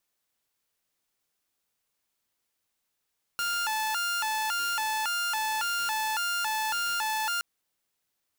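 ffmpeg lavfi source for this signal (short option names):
-f lavfi -i "aevalsrc='0.0596*(2*mod((1135.5*t+264.5/1.8*(0.5-abs(mod(1.8*t,1)-0.5))),1)-1)':d=4.02:s=44100"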